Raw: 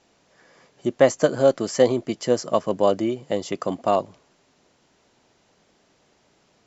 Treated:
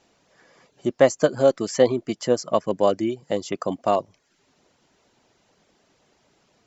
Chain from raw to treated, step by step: reverb removal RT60 0.51 s

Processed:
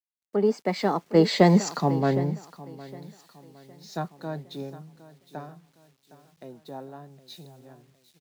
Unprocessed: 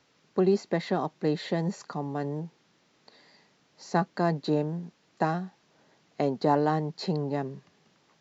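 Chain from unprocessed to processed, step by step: Doppler pass-by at 1.74 s, 31 m/s, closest 15 m; on a send: feedback delay 762 ms, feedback 49%, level -12 dB; on the sum: bit crusher 11-bit; in parallel at +3 dB: compression, threshold -51 dBFS, peak gain reduction 24 dB; on the sum: high-pass 58 Hz; three bands expanded up and down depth 100%; trim +4 dB

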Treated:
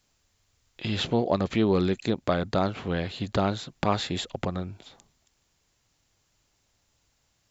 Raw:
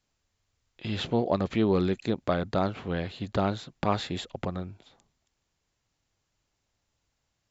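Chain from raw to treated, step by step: treble shelf 4.3 kHz +5.5 dB; in parallel at 0 dB: compression, threshold -38 dBFS, peak gain reduction 17.5 dB

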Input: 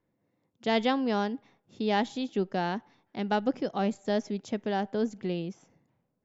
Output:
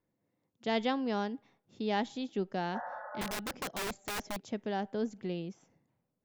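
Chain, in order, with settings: 2.77–3.35 s: spectral replace 480–2000 Hz both; 3.21–4.42 s: integer overflow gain 26 dB; trim -5 dB

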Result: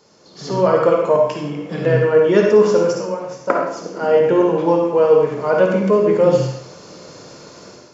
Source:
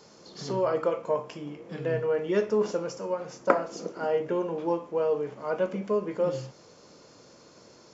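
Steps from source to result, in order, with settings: level rider gain up to 13.5 dB; on a send: reverberation RT60 0.65 s, pre-delay 48 ms, DRR 1.5 dB; on the sum: trim -1 dB

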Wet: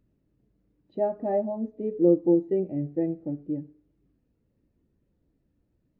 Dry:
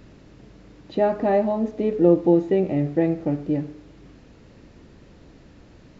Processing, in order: spectral contrast expander 1.5:1; trim -4 dB

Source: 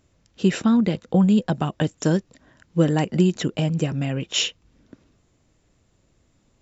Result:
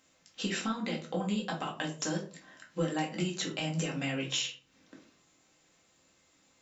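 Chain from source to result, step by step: high-pass 1.3 kHz 6 dB/octave; compression 6:1, threshold -36 dBFS, peak gain reduction 16 dB; simulated room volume 220 m³, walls furnished, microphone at 2.1 m; trim +1.5 dB

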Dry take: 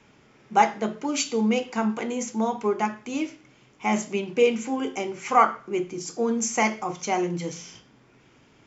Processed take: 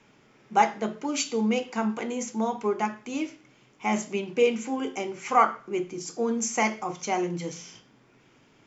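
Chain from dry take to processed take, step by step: peaking EQ 66 Hz -8.5 dB 0.91 oct; trim -2 dB

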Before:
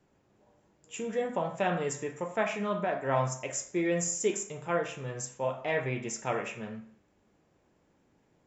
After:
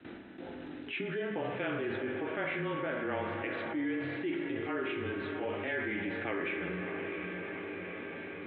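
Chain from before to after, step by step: rotating-head pitch shifter -1.5 st; Chebyshev low-pass 4 kHz, order 10; gate with hold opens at -60 dBFS; high-pass 98 Hz; resonant low shelf 230 Hz -8 dB, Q 1.5; frequency shift -22 Hz; high-order bell 690 Hz -8.5 dB; in parallel at -1 dB: peak limiter -34 dBFS, peak gain reduction 14 dB; on the sum: echo that smears into a reverb 650 ms, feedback 41%, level -13 dB; spring tank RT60 2.9 s, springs 30/55 ms, chirp 35 ms, DRR 8 dB; level flattener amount 70%; trim -7.5 dB

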